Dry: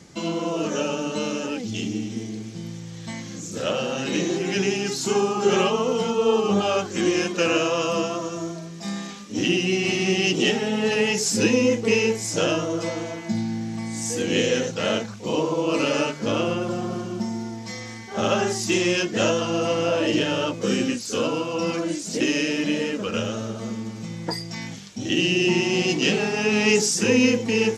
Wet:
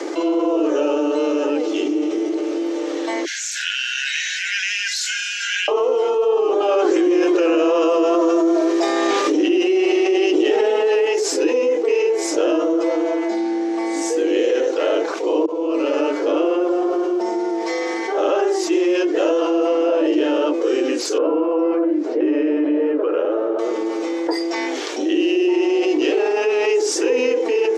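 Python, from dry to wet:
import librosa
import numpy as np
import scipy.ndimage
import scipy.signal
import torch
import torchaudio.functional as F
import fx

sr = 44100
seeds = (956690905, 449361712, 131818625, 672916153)

y = fx.echo_throw(x, sr, start_s=0.99, length_s=0.44, ms=400, feedback_pct=75, wet_db=-14.5)
y = fx.brickwall_highpass(y, sr, low_hz=1400.0, at=(3.25, 5.68))
y = fx.env_flatten(y, sr, amount_pct=100, at=(6.68, 11.05))
y = fx.lowpass(y, sr, hz=1600.0, slope=12, at=(21.18, 23.59))
y = fx.edit(y, sr, fx.fade_in_span(start_s=15.46, length_s=0.78), tone=tone)
y = scipy.signal.sosfilt(scipy.signal.butter(16, 300.0, 'highpass', fs=sr, output='sos'), y)
y = fx.tilt_eq(y, sr, slope=-4.5)
y = fx.env_flatten(y, sr, amount_pct=70)
y = y * librosa.db_to_amplitude(-4.0)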